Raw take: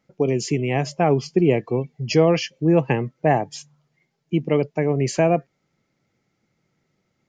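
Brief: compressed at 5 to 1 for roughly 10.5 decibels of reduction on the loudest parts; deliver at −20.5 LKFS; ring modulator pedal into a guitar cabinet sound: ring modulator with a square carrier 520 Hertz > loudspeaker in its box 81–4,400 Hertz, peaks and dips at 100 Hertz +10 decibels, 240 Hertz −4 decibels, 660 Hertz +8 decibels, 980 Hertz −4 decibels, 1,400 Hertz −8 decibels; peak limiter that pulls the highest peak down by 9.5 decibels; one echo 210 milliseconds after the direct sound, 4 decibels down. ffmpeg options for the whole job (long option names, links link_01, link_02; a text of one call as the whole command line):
ffmpeg -i in.wav -af "acompressor=threshold=-24dB:ratio=5,alimiter=limit=-21.5dB:level=0:latency=1,aecho=1:1:210:0.631,aeval=exprs='val(0)*sgn(sin(2*PI*520*n/s))':channel_layout=same,highpass=81,equalizer=frequency=100:width_type=q:width=4:gain=10,equalizer=frequency=240:width_type=q:width=4:gain=-4,equalizer=frequency=660:width_type=q:width=4:gain=8,equalizer=frequency=980:width_type=q:width=4:gain=-4,equalizer=frequency=1400:width_type=q:width=4:gain=-8,lowpass=frequency=4400:width=0.5412,lowpass=frequency=4400:width=1.3066,volume=9dB" out.wav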